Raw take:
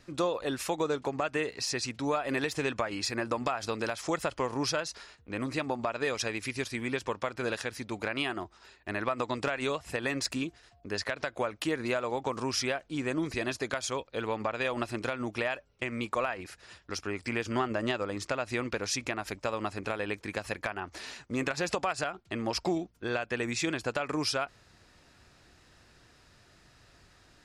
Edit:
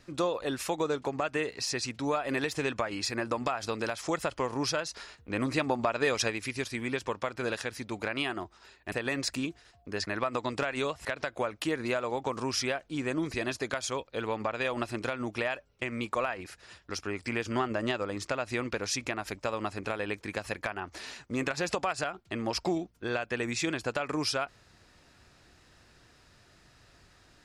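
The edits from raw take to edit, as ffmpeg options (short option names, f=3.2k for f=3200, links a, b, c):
-filter_complex "[0:a]asplit=6[a][b][c][d][e][f];[a]atrim=end=4.972[g];[b]atrim=start=4.968:end=6.302,asetpts=PTS-STARTPTS,volume=3.5dB[h];[c]atrim=start=6.298:end=8.922[i];[d]atrim=start=9.898:end=11.052[j];[e]atrim=start=8.918:end=9.902[k];[f]atrim=start=11.048[l];[g][h]acrossfade=d=0.004:c1=hsin:c2=hsin[m];[m][i]acrossfade=d=0.004:c1=hsin:c2=hsin[n];[n][j]acrossfade=d=0.004:c1=hsin:c2=hsin[o];[o][k]acrossfade=d=0.004:c1=hsin:c2=hsin[p];[p][l]acrossfade=d=0.004:c1=hsin:c2=hsin"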